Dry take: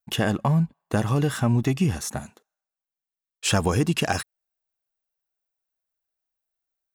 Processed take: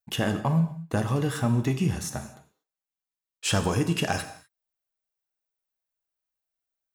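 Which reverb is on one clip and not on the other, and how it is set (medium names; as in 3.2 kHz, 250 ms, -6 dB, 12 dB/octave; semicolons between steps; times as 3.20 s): gated-style reverb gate 270 ms falling, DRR 7 dB; trim -3.5 dB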